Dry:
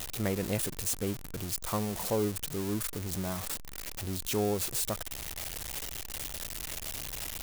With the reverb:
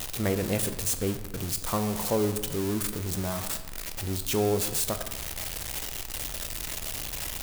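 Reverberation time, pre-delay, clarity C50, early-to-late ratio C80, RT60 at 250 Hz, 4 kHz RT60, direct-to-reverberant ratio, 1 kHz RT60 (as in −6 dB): 1.2 s, 9 ms, 10.5 dB, 12.0 dB, 1.2 s, 0.75 s, 8.0 dB, 1.2 s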